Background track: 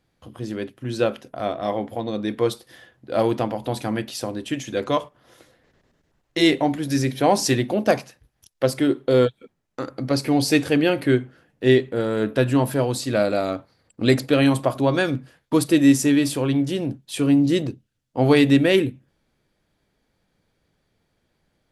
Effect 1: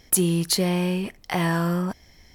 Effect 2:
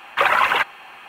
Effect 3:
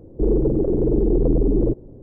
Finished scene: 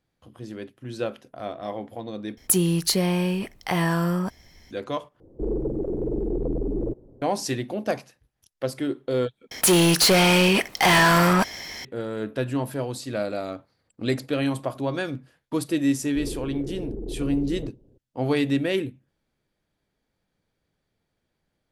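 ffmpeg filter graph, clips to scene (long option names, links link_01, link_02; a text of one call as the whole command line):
ffmpeg -i bed.wav -i cue0.wav -i cue1.wav -i cue2.wav -filter_complex "[1:a]asplit=2[link_01][link_02];[3:a]asplit=2[link_03][link_04];[0:a]volume=-7.5dB[link_05];[link_03]lowshelf=frequency=410:gain=-6.5[link_06];[link_02]asplit=2[link_07][link_08];[link_08]highpass=frequency=720:poles=1,volume=31dB,asoftclip=type=tanh:threshold=-5dB[link_09];[link_07][link_09]amix=inputs=2:normalize=0,lowpass=frequency=8000:poles=1,volume=-6dB[link_10];[link_05]asplit=4[link_11][link_12][link_13][link_14];[link_11]atrim=end=2.374[link_15];[link_01]atrim=end=2.34[link_16];[link_12]atrim=start=4.706:end=5.204[link_17];[link_06]atrim=end=2.02,asetpts=PTS-STARTPTS,volume=-4dB[link_18];[link_13]atrim=start=7.216:end=9.514[link_19];[link_10]atrim=end=2.34,asetpts=PTS-STARTPTS,volume=-4dB[link_20];[link_14]atrim=start=11.846[link_21];[link_04]atrim=end=2.02,asetpts=PTS-STARTPTS,volume=-15.5dB,afade=type=in:duration=0.004:curve=hsin,afade=type=out:start_time=2.016:duration=0.004:curve=hsin,adelay=15960[link_22];[link_15][link_16]acrossfade=duration=0.004:curve1=hsin:curve2=hsin[link_23];[link_23][link_17]acrossfade=duration=0.004:curve1=hsin:curve2=hsin[link_24];[link_24][link_18]acrossfade=duration=0.004:curve1=hsin:curve2=hsin[link_25];[link_25][link_19]acrossfade=duration=0.004:curve1=hsin:curve2=hsin[link_26];[link_26][link_20]acrossfade=duration=0.004:curve1=hsin:curve2=hsin[link_27];[link_27][link_21]acrossfade=duration=0.004:curve1=hsin:curve2=hsin[link_28];[link_28][link_22]amix=inputs=2:normalize=0" out.wav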